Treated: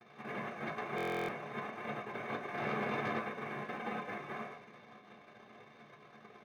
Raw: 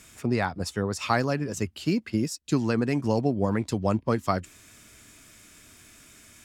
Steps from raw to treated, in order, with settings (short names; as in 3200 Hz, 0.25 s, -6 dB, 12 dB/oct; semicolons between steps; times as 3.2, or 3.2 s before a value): FFT order left unsorted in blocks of 256 samples; compressor 2:1, threshold -31 dBFS, peak gain reduction 7.5 dB; 2.57–3.17 sample leveller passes 3; brick-wall FIR band-pass 480–1000 Hz; frequency-shifting echo 0.108 s, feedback 32%, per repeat +74 Hz, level -6 dB; noise vocoder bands 3; 3.7–4.11 comb 3.9 ms, depth 48%; sample leveller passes 3; reverb RT60 0.45 s, pre-delay 3 ms, DRR -2 dB; stuck buffer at 0.96, samples 1024, times 13; gain -5.5 dB